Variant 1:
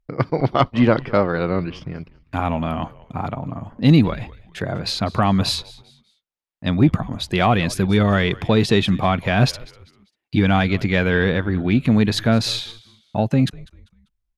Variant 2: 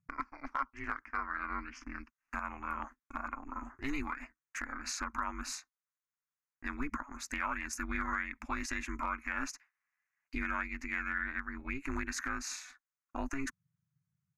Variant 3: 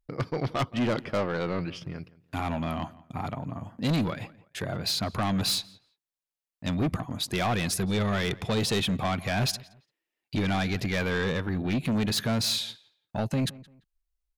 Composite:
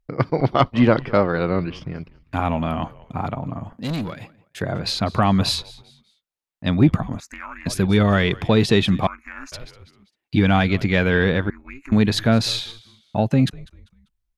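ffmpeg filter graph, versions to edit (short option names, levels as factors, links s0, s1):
-filter_complex "[1:a]asplit=3[s0][s1][s2];[0:a]asplit=5[s3][s4][s5][s6][s7];[s3]atrim=end=3.732[s8];[2:a]atrim=start=3.728:end=4.612[s9];[s4]atrim=start=4.608:end=7.202[s10];[s0]atrim=start=7.198:end=7.662[s11];[s5]atrim=start=7.658:end=9.072[s12];[s1]atrim=start=9.068:end=9.522[s13];[s6]atrim=start=9.518:end=11.502[s14];[s2]atrim=start=11.498:end=11.922[s15];[s7]atrim=start=11.918[s16];[s8][s9]acrossfade=d=0.004:c1=hsin:c2=hsin[s17];[s17][s10]acrossfade=d=0.004:c1=hsin:c2=hsin[s18];[s18][s11]acrossfade=d=0.004:c1=hsin:c2=hsin[s19];[s19][s12]acrossfade=d=0.004:c1=hsin:c2=hsin[s20];[s20][s13]acrossfade=d=0.004:c1=hsin:c2=hsin[s21];[s21][s14]acrossfade=d=0.004:c1=hsin:c2=hsin[s22];[s22][s15]acrossfade=d=0.004:c1=hsin:c2=hsin[s23];[s23][s16]acrossfade=d=0.004:c1=hsin:c2=hsin"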